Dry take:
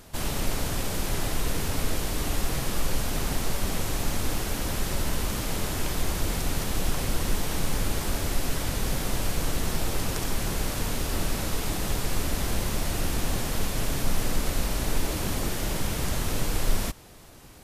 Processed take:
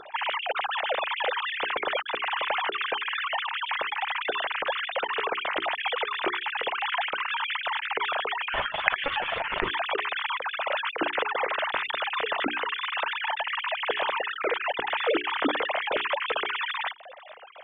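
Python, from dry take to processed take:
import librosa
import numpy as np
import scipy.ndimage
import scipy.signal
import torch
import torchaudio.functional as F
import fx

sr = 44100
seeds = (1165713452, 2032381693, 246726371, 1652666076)

y = fx.sine_speech(x, sr)
y = fx.hum_notches(y, sr, base_hz=60, count=7)
y = fx.lpc_monotone(y, sr, seeds[0], pitch_hz=280.0, order=16, at=(8.5, 9.71))
y = y * librosa.db_to_amplitude(-4.5)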